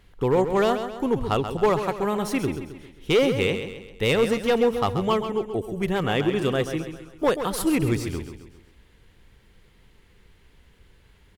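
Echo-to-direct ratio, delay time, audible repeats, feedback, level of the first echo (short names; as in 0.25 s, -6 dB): -8.0 dB, 0.133 s, 4, 46%, -9.0 dB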